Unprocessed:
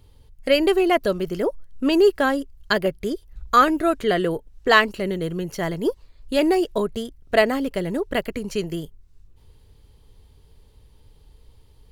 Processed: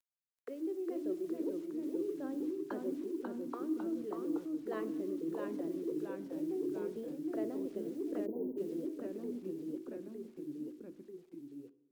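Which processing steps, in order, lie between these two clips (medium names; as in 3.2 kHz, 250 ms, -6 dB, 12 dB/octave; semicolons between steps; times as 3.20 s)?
hum notches 60/120/180/240/300/360/420 Hz; auto-wah 330–3200 Hz, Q 7.5, down, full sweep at -23 dBFS; reverse; compression 8:1, threshold -39 dBFS, peak gain reduction 21 dB; reverse; bit crusher 11-bit; ever faster or slower copies 381 ms, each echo -1 st, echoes 3; on a send at -14 dB: reverberation RT60 1.1 s, pre-delay 3 ms; on the sum: spectral selection erased 8.26–8.57 s, 1–12 kHz; trim +2 dB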